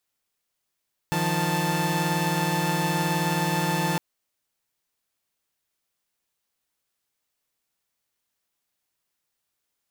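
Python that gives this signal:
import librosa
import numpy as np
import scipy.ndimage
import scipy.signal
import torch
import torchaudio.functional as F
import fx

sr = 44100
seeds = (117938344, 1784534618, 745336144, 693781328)

y = fx.chord(sr, length_s=2.86, notes=(51, 53, 81), wave='saw', level_db=-24.5)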